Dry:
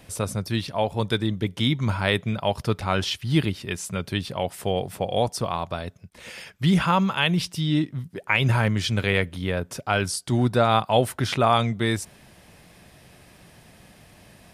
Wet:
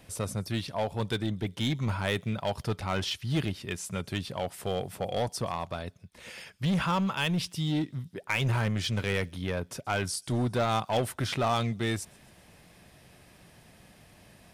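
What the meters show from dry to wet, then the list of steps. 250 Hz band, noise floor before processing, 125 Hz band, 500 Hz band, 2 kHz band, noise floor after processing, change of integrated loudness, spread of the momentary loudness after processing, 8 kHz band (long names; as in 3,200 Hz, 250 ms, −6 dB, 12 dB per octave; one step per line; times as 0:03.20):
−6.5 dB, −53 dBFS, −6.0 dB, −7.0 dB, −7.0 dB, −57 dBFS, −6.5 dB, 8 LU, −4.5 dB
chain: in parallel at −4 dB: wave folding −20 dBFS
on the sum: delay with a high-pass on its return 131 ms, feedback 58%, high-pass 5,100 Hz, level −23 dB
level −9 dB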